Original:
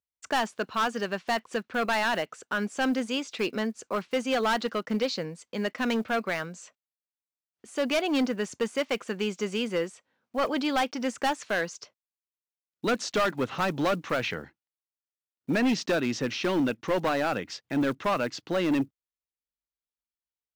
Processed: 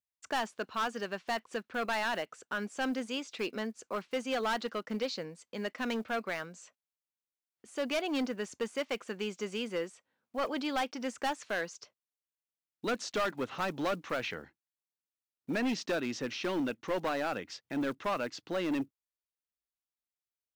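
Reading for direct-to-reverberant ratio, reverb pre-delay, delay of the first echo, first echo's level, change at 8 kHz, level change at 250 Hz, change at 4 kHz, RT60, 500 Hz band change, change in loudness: no reverb audible, no reverb audible, no echo audible, no echo audible, −6.0 dB, −7.5 dB, −6.0 dB, no reverb audible, −6.5 dB, −6.5 dB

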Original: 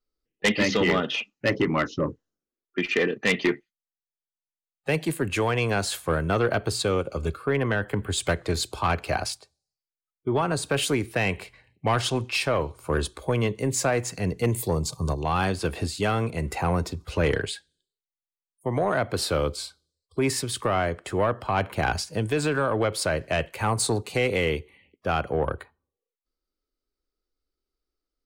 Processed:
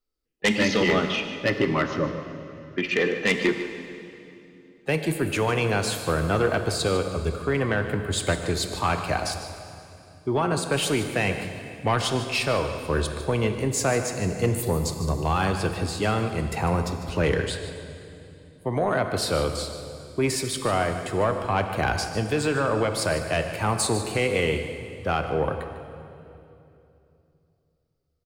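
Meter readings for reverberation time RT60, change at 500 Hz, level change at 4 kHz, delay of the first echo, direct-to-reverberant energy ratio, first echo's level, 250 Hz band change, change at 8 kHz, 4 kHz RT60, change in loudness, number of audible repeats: 2.9 s, +1.0 dB, +1.0 dB, 150 ms, 6.5 dB, −13.0 dB, +1.0 dB, +1.0 dB, 2.5 s, +1.0 dB, 1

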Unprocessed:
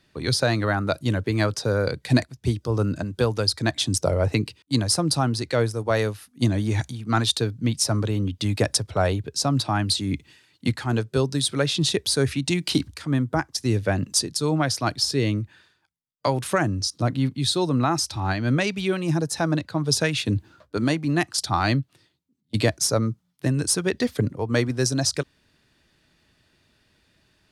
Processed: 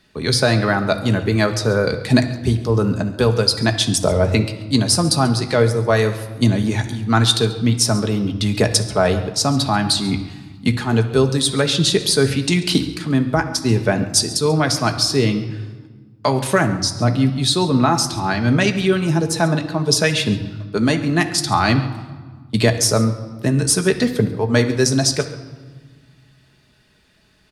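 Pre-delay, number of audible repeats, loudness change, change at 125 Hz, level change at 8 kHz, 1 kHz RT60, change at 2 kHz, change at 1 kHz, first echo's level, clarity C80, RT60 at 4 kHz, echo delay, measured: 5 ms, 1, +6.0 dB, +5.5 dB, +6.0 dB, 1.5 s, +6.5 dB, +6.0 dB, −18.5 dB, 12.5 dB, 1.0 s, 138 ms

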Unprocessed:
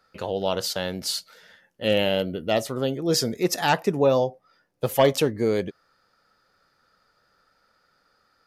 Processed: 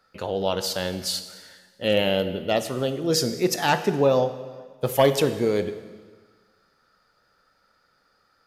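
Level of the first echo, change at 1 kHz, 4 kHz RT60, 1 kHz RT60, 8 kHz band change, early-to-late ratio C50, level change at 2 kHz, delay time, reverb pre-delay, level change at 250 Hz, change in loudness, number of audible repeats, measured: no echo audible, +0.5 dB, 1.4 s, 1.5 s, +0.5 dB, 11.5 dB, +0.5 dB, no echo audible, 6 ms, +0.5 dB, +0.5 dB, no echo audible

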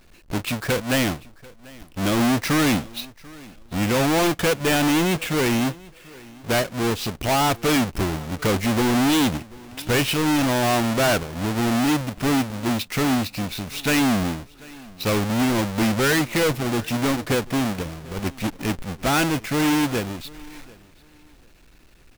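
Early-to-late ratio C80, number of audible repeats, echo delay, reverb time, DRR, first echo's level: no reverb audible, 1, 740 ms, no reverb audible, no reverb audible, −23.0 dB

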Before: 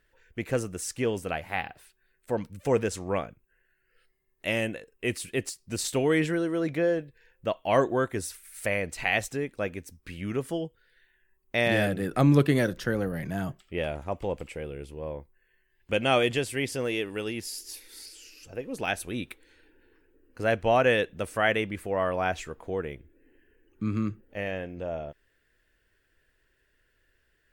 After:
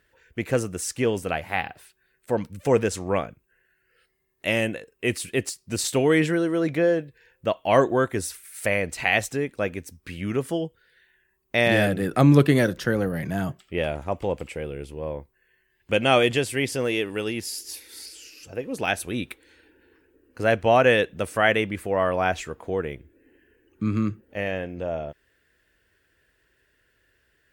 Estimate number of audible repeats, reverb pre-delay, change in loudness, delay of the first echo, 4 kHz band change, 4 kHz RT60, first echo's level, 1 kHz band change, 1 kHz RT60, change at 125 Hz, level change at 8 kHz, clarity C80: no echo audible, no reverb audible, +4.5 dB, no echo audible, +4.5 dB, no reverb audible, no echo audible, +4.5 dB, no reverb audible, +4.5 dB, +4.5 dB, no reverb audible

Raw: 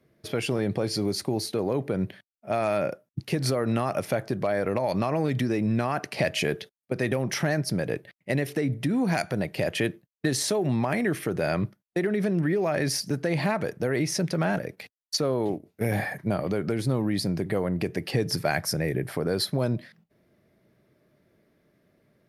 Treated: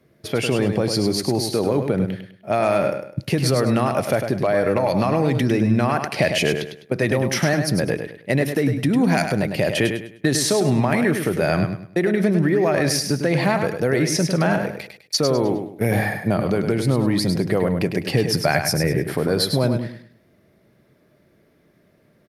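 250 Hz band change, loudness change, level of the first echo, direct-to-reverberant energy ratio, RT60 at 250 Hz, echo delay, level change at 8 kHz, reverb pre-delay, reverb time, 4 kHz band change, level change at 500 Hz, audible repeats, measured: +7.0 dB, +7.0 dB, −7.0 dB, no reverb audible, no reverb audible, 102 ms, +7.0 dB, no reverb audible, no reverb audible, +7.0 dB, +7.0 dB, 3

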